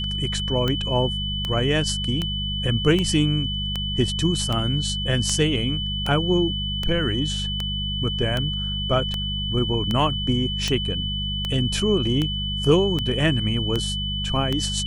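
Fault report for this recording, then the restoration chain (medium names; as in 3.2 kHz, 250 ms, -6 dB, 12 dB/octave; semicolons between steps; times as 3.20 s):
hum 50 Hz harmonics 4 -29 dBFS
tick 78 rpm -11 dBFS
whine 3 kHz -27 dBFS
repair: de-click; de-hum 50 Hz, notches 4; band-stop 3 kHz, Q 30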